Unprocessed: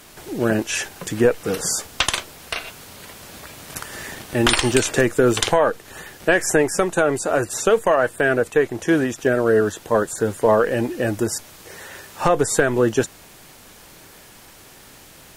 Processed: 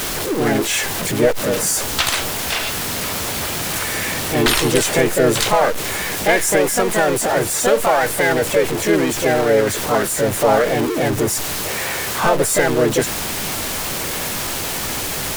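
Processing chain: zero-crossing step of -17 dBFS; harmoniser +4 st -1 dB; gain -3.5 dB

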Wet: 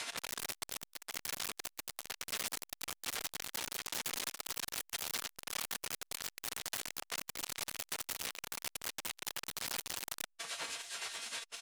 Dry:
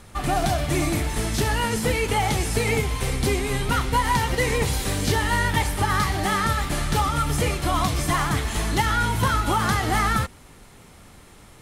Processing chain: LPF 6900 Hz 12 dB/oct; de-hum 89.07 Hz, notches 8; spectral gate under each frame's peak -20 dB weak; limiter -27 dBFS, peak gain reduction 9.5 dB; resonator 230 Hz, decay 0.25 s, harmonics all, mix 80%; tremolo 9.6 Hz, depth 64%; sine folder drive 20 dB, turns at -33.5 dBFS; doubler 29 ms -13 dB; core saturation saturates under 3900 Hz; gain +5.5 dB

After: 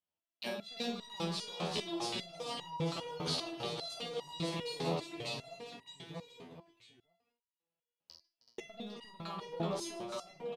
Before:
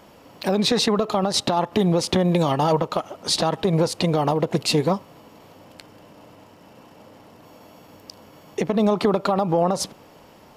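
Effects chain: gate -37 dBFS, range -44 dB; bell 3100 Hz +11 dB 1 oct; limiter -12.5 dBFS, peak gain reduction 10.5 dB; compressor 6:1, threshold -28 dBFS, peak gain reduction 10.5 dB; tapped delay 48/145/314/378/837/847 ms -6.5/-17.5/-14/-9/-19/-18 dB; echoes that change speed 0.32 s, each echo -1 st, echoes 2; stepped resonator 5 Hz 83–960 Hz; gain +1.5 dB

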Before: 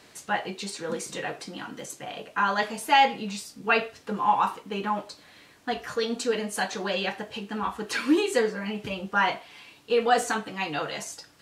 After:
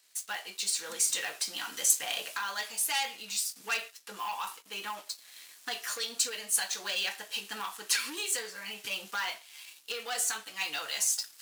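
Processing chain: recorder AGC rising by 12 dB/s; sample leveller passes 2; differentiator; gain -3 dB

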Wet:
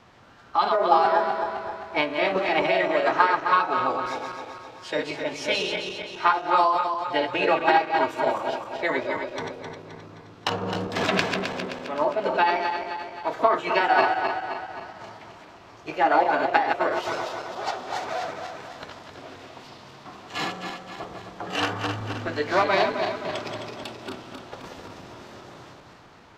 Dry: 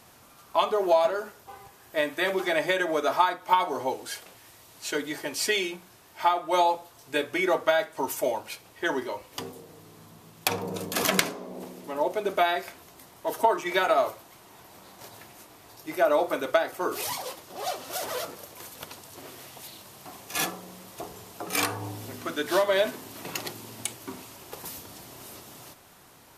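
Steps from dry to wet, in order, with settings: regenerating reverse delay 0.131 s, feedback 71%, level -5 dB; air absorption 250 m; formant shift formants +3 st; gain +3 dB

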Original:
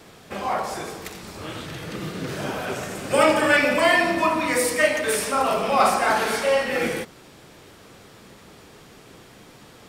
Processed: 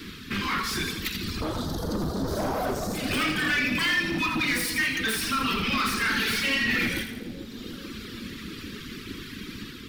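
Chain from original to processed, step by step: octaver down 1 oct, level -4 dB; reverb removal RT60 1.7 s; AGC gain up to 4 dB; Butterworth band-stop 670 Hz, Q 0.61, from 1.4 s 2300 Hz, from 2.93 s 690 Hz; compressor 6:1, threshold -27 dBFS, peak gain reduction 12.5 dB; soft clip -30.5 dBFS, distortion -11 dB; graphic EQ 125/250/4000/8000 Hz -7/+7/+4/-10 dB; split-band echo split 720 Hz, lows 0.437 s, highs 83 ms, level -8 dB; dynamic EQ 320 Hz, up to -6 dB, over -45 dBFS, Q 0.71; gain +9 dB

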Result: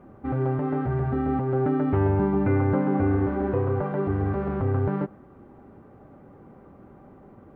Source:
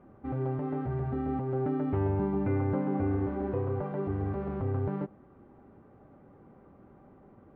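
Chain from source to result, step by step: dynamic EQ 1500 Hz, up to +4 dB, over -57 dBFS, Q 1.7; gain +6.5 dB

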